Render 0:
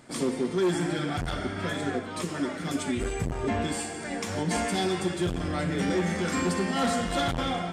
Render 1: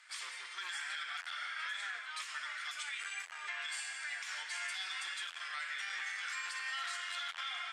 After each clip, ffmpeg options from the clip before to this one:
ffmpeg -i in.wav -af "highpass=frequency=1500:width=0.5412,highpass=frequency=1500:width=1.3066,aemphasis=mode=reproduction:type=50fm,alimiter=level_in=9.5dB:limit=-24dB:level=0:latency=1:release=83,volume=-9.5dB,volume=2.5dB" out.wav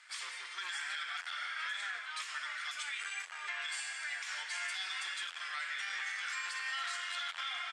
ffmpeg -i in.wav -filter_complex "[0:a]lowpass=11000,asplit=5[link_01][link_02][link_03][link_04][link_05];[link_02]adelay=462,afreqshift=-52,volume=-21.5dB[link_06];[link_03]adelay=924,afreqshift=-104,volume=-26.9dB[link_07];[link_04]adelay=1386,afreqshift=-156,volume=-32.2dB[link_08];[link_05]adelay=1848,afreqshift=-208,volume=-37.6dB[link_09];[link_01][link_06][link_07][link_08][link_09]amix=inputs=5:normalize=0,volume=1.5dB" out.wav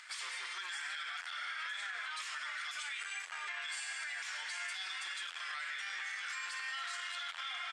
ffmpeg -i in.wav -af "acompressor=mode=upward:threshold=-60dB:ratio=2.5,alimiter=level_in=13.5dB:limit=-24dB:level=0:latency=1:release=90,volume=-13.5dB,volume=5dB" out.wav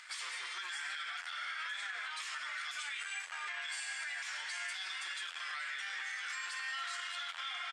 ffmpeg -i in.wav -filter_complex "[0:a]asplit=2[link_01][link_02];[link_02]adelay=14,volume=-11dB[link_03];[link_01][link_03]amix=inputs=2:normalize=0" out.wav

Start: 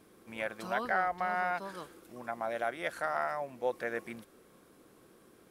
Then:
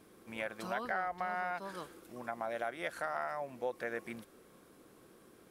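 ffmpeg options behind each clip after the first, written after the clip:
ffmpeg -i in.wav -af "acompressor=threshold=-36dB:ratio=2" out.wav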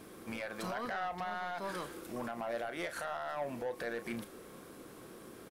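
ffmpeg -i in.wav -filter_complex "[0:a]alimiter=level_in=10dB:limit=-24dB:level=0:latency=1:release=135,volume=-10dB,asoftclip=type=tanh:threshold=-40dB,asplit=2[link_01][link_02];[link_02]adelay=34,volume=-11dB[link_03];[link_01][link_03]amix=inputs=2:normalize=0,volume=8.5dB" out.wav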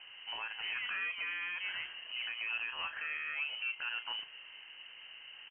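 ffmpeg -i in.wav -af "lowpass=frequency=2700:width_type=q:width=0.5098,lowpass=frequency=2700:width_type=q:width=0.6013,lowpass=frequency=2700:width_type=q:width=0.9,lowpass=frequency=2700:width_type=q:width=2.563,afreqshift=-3200" out.wav

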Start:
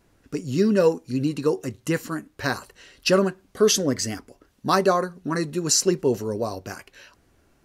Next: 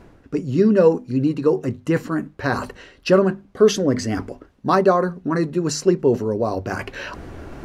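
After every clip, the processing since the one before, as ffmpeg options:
ffmpeg -i in.wav -af "lowpass=frequency=1300:poles=1,bandreject=frequency=50:width_type=h:width=6,bandreject=frequency=100:width_type=h:width=6,bandreject=frequency=150:width_type=h:width=6,bandreject=frequency=200:width_type=h:width=6,bandreject=frequency=250:width_type=h:width=6,areverse,acompressor=mode=upward:threshold=-22dB:ratio=2.5,areverse,volume=5dB" out.wav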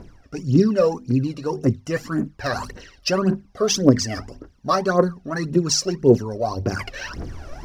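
ffmpeg -i in.wav -af "equalizer=frequency=5400:width=2.8:gain=11,aphaser=in_gain=1:out_gain=1:delay=1.8:decay=0.74:speed=1.8:type=triangular,volume=-4.5dB" out.wav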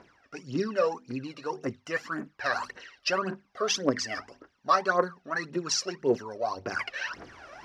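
ffmpeg -i in.wav -af "bandpass=frequency=1800:width_type=q:width=0.74:csg=0" out.wav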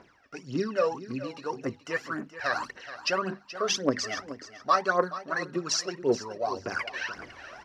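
ffmpeg -i in.wav -af "aecho=1:1:427|854:0.2|0.0339" out.wav

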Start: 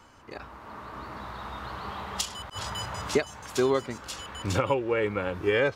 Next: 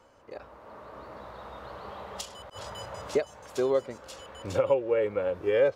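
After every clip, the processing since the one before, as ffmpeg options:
ffmpeg -i in.wav -af "equalizer=frequency=540:width_type=o:width=0.77:gain=13.5,volume=-8.5dB" out.wav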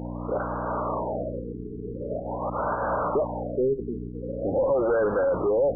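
ffmpeg -i in.wav -filter_complex "[0:a]aeval=exprs='val(0)+0.0112*(sin(2*PI*60*n/s)+sin(2*PI*2*60*n/s)/2+sin(2*PI*3*60*n/s)/3+sin(2*PI*4*60*n/s)/4+sin(2*PI*5*60*n/s)/5)':channel_layout=same,asplit=2[link_01][link_02];[link_02]highpass=frequency=720:poles=1,volume=34dB,asoftclip=type=tanh:threshold=-11.5dB[link_03];[link_01][link_03]amix=inputs=2:normalize=0,lowpass=frequency=2000:poles=1,volume=-6dB,afftfilt=real='re*lt(b*sr/1024,440*pow(1700/440,0.5+0.5*sin(2*PI*0.44*pts/sr)))':imag='im*lt(b*sr/1024,440*pow(1700/440,0.5+0.5*sin(2*PI*0.44*pts/sr)))':win_size=1024:overlap=0.75,volume=-4dB" out.wav

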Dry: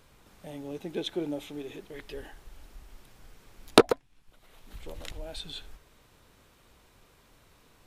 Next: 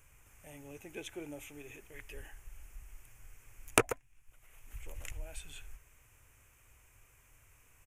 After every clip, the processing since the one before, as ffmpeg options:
ffmpeg -i in.wav -af "firequalizer=gain_entry='entry(120,0);entry(170,-16);entry(250,-12);entry(2500,2);entry(4000,-21);entry(6400,3)':delay=0.05:min_phase=1,volume=-1dB" out.wav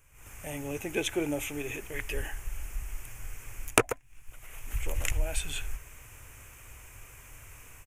ffmpeg -i in.wav -af "dynaudnorm=framelen=130:gausssize=3:maxgain=15dB,volume=-1dB" out.wav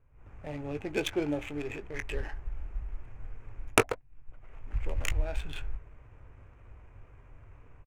ffmpeg -i in.wav -filter_complex "[0:a]adynamicsmooth=sensitivity=5:basefreq=920,asplit=2[link_01][link_02];[link_02]adelay=20,volume=-12.5dB[link_03];[link_01][link_03]amix=inputs=2:normalize=0" out.wav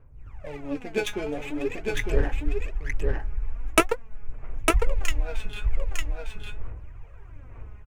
ffmpeg -i in.wav -filter_complex "[0:a]aphaser=in_gain=1:out_gain=1:delay=4.8:decay=0.76:speed=0.45:type=sinusoidal,asplit=2[link_01][link_02];[link_02]aecho=0:1:904:0.708[link_03];[link_01][link_03]amix=inputs=2:normalize=0" out.wav

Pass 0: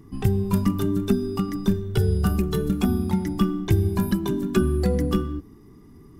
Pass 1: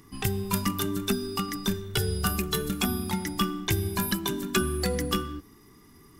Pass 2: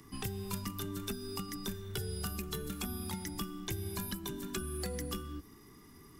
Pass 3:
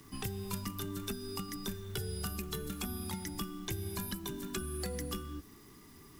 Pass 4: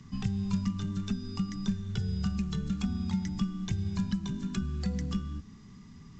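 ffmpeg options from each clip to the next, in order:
ffmpeg -i in.wav -af "tiltshelf=frequency=870:gain=-8.5" out.wav
ffmpeg -i in.wav -filter_complex "[0:a]acrossover=split=100|530|3100|6800[link_01][link_02][link_03][link_04][link_05];[link_01]acompressor=threshold=-41dB:ratio=4[link_06];[link_02]acompressor=threshold=-40dB:ratio=4[link_07];[link_03]acompressor=threshold=-46dB:ratio=4[link_08];[link_04]acompressor=threshold=-48dB:ratio=4[link_09];[link_05]acompressor=threshold=-43dB:ratio=4[link_10];[link_06][link_07][link_08][link_09][link_10]amix=inputs=5:normalize=0,volume=-2dB" out.wav
ffmpeg -i in.wav -af "acrusher=bits=9:mix=0:aa=0.000001" out.wav
ffmpeg -i in.wav -af "lowshelf=frequency=260:width_type=q:width=3:gain=8,volume=-1.5dB" -ar 16000 -c:a pcm_mulaw out.wav

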